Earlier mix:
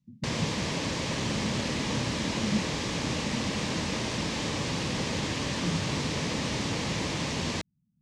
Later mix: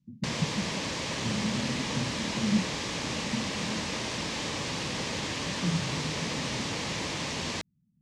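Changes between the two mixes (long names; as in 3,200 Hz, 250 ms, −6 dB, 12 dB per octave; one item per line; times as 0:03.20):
speech +8.0 dB
master: add low-shelf EQ 420 Hz −6 dB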